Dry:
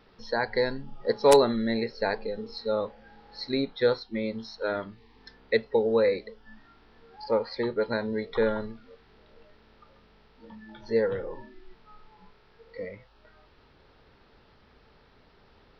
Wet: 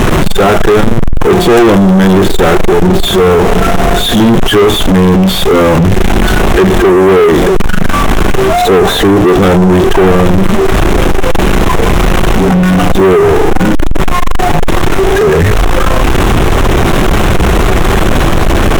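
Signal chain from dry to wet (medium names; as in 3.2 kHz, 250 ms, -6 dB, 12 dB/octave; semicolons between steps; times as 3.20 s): jump at every zero crossing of -23 dBFS; tape speed -16%; tilt EQ -2 dB/octave; waveshaping leveller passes 5; peaking EQ 4.6 kHz -7 dB 0.46 oct; trim +2.5 dB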